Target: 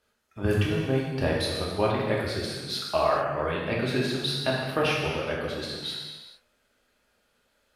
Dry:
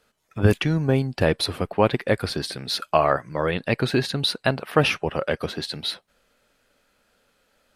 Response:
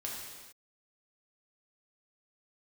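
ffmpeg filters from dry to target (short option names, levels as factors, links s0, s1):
-filter_complex "[1:a]atrim=start_sample=2205[s0];[0:a][s0]afir=irnorm=-1:irlink=0,volume=0.562"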